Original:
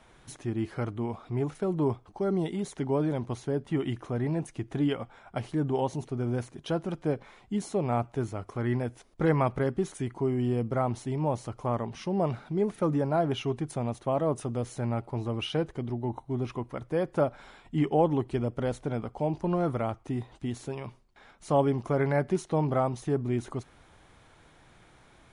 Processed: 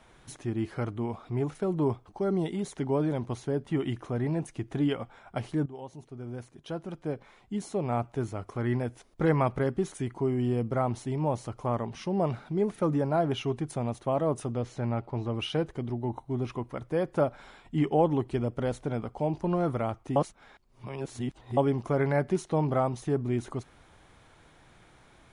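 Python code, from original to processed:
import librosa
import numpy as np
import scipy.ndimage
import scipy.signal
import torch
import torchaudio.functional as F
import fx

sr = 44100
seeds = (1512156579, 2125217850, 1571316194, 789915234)

y = fx.lowpass(x, sr, hz=5200.0, slope=12, at=(14.52, 15.35))
y = fx.edit(y, sr, fx.fade_in_from(start_s=5.66, length_s=2.75, floor_db=-16.0),
    fx.reverse_span(start_s=20.16, length_s=1.41), tone=tone)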